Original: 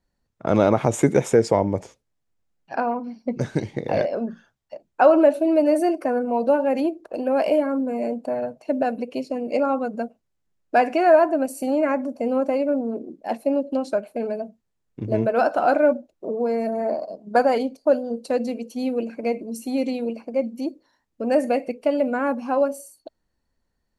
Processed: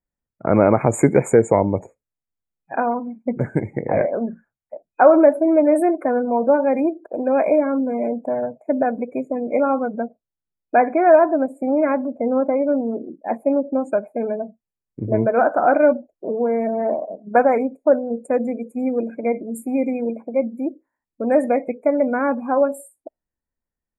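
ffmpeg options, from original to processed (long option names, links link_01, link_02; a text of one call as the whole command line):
ffmpeg -i in.wav -filter_complex "[0:a]asplit=3[link_01][link_02][link_03];[link_01]afade=type=out:start_time=9.93:duration=0.02[link_04];[link_02]lowpass=frequency=2200:poles=1,afade=type=in:start_time=9.93:duration=0.02,afade=type=out:start_time=12.69:duration=0.02[link_05];[link_03]afade=type=in:start_time=12.69:duration=0.02[link_06];[link_04][link_05][link_06]amix=inputs=3:normalize=0,afftfilt=real='re*(1-between(b*sr/4096,2500,6700))':imag='im*(1-between(b*sr/4096,2500,6700))':win_size=4096:overlap=0.75,afftdn=noise_reduction=16:noise_floor=-43,volume=3dB" out.wav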